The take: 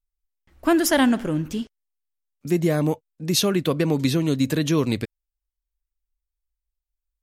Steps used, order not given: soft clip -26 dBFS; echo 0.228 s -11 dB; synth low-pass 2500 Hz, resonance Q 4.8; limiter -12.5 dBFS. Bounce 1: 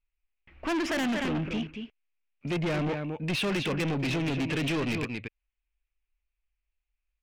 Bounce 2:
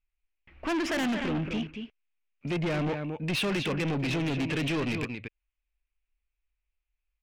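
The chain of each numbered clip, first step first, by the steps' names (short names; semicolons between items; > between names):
echo > limiter > synth low-pass > soft clip; synth low-pass > limiter > echo > soft clip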